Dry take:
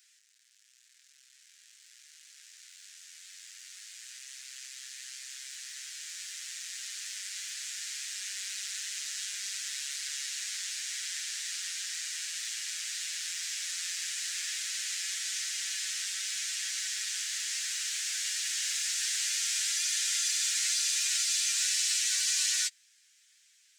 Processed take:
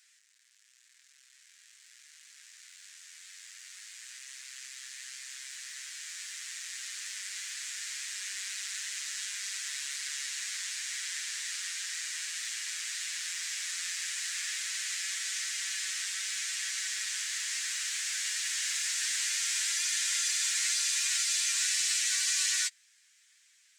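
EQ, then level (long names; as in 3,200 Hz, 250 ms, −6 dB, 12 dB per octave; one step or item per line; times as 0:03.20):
graphic EQ with 10 bands 1,000 Hz +12 dB, 2,000 Hz +7 dB, 4,000 Hz +3 dB, 8,000 Hz +5 dB, 16,000 Hz +4 dB
−7.0 dB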